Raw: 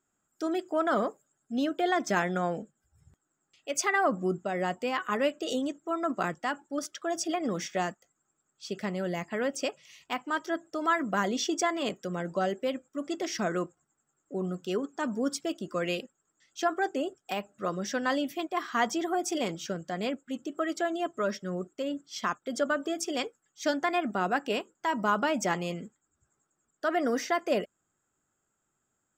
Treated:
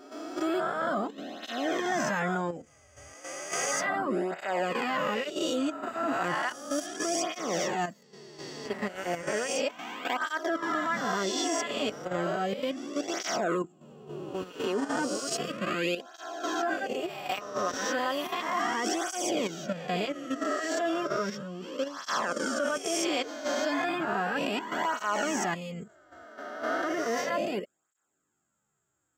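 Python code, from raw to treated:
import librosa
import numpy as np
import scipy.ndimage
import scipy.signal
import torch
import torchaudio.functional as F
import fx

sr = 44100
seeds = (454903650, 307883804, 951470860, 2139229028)

y = fx.spec_swells(x, sr, rise_s=1.58)
y = fx.level_steps(y, sr, step_db=10)
y = fx.flanger_cancel(y, sr, hz=0.34, depth_ms=6.2)
y = y * librosa.db_to_amplitude(3.5)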